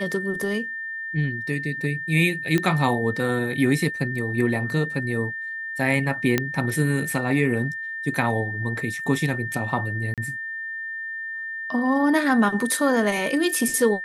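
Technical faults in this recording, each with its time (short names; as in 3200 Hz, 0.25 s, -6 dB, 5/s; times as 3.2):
tone 1800 Hz -29 dBFS
2.58 pop -10 dBFS
6.38 pop -6 dBFS
10.14–10.18 gap 37 ms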